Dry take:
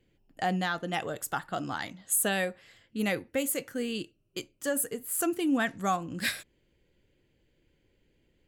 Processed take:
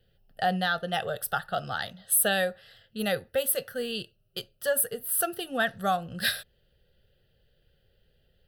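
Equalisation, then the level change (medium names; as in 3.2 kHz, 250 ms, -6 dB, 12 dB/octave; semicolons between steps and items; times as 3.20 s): treble shelf 5 kHz +4.5 dB; static phaser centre 1.5 kHz, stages 8; +5.0 dB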